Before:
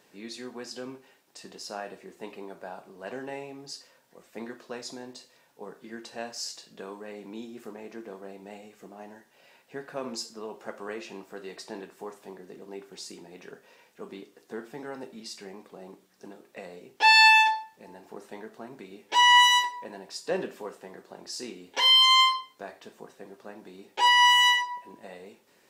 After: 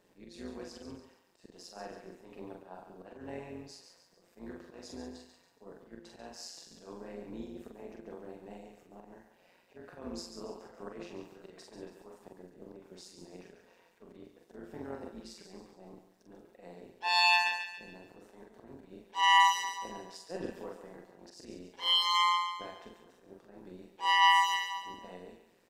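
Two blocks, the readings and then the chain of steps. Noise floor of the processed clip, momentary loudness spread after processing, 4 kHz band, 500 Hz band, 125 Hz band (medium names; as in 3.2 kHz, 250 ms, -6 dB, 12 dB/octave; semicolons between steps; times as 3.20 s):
-67 dBFS, 24 LU, -9.5 dB, -7.0 dB, -2.5 dB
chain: tilt shelf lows +4.5 dB, about 760 Hz; slow attack 129 ms; doubling 44 ms -3 dB; thinning echo 140 ms, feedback 43%, high-pass 710 Hz, level -7 dB; AM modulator 180 Hz, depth 55%; trim -4.5 dB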